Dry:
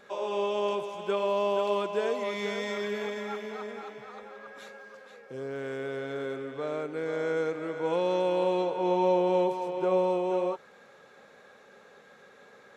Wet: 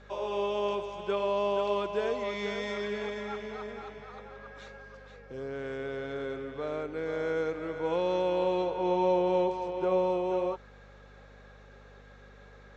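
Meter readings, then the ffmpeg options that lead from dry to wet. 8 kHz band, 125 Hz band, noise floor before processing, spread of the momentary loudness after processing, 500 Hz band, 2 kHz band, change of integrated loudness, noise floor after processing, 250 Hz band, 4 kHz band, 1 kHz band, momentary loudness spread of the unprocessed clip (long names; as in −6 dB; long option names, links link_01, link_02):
can't be measured, −1.0 dB, −56 dBFS, 18 LU, −1.5 dB, −1.5 dB, −1.5 dB, −53 dBFS, −1.5 dB, −1.5 dB, −1.5 dB, 17 LU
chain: -af "aeval=exprs='val(0)+0.00251*(sin(2*PI*50*n/s)+sin(2*PI*2*50*n/s)/2+sin(2*PI*3*50*n/s)/3+sin(2*PI*4*50*n/s)/4+sin(2*PI*5*50*n/s)/5)':channel_layout=same,lowpass=frequency=6600:width=0.5412,lowpass=frequency=6600:width=1.3066,volume=-1.5dB"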